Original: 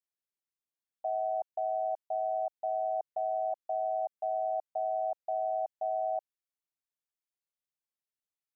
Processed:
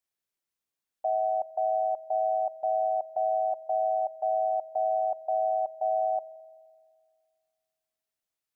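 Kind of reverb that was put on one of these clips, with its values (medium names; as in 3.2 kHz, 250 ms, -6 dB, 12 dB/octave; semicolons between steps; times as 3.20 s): spring tank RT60 2 s, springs 42 ms, chirp 70 ms, DRR 16 dB; trim +5 dB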